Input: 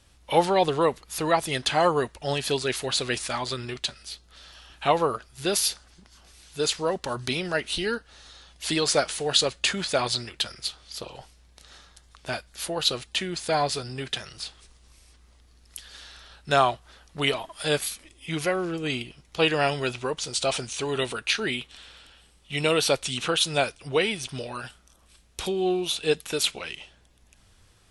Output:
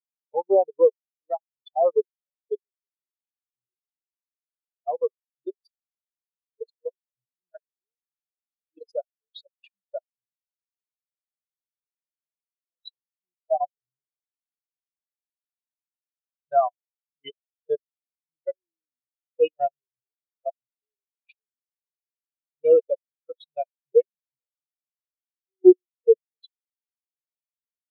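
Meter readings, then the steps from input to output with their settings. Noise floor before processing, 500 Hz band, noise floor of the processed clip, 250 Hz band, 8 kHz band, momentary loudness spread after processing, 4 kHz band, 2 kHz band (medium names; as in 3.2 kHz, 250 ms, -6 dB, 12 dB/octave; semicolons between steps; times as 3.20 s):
-58 dBFS, +2.5 dB, under -85 dBFS, +0.5 dB, under -40 dB, 20 LU, -25.5 dB, under -25 dB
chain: level held to a coarse grid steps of 23 dB; spectral contrast expander 4:1; trim +7 dB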